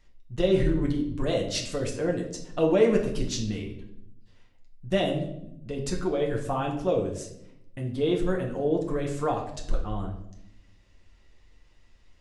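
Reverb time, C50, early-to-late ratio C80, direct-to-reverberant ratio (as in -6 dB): 0.80 s, 7.0 dB, 11.0 dB, -0.5 dB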